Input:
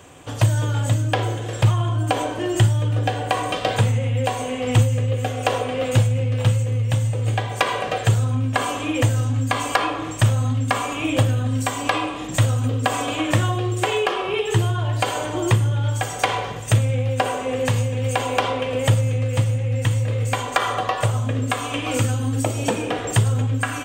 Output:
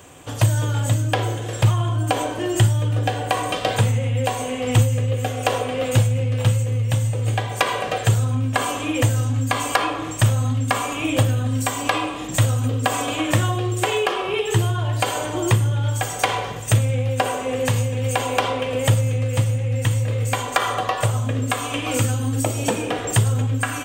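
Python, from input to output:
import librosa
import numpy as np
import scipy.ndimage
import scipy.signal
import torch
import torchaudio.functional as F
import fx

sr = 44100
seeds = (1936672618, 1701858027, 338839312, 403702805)

y = fx.high_shelf(x, sr, hz=9500.0, db=8.5)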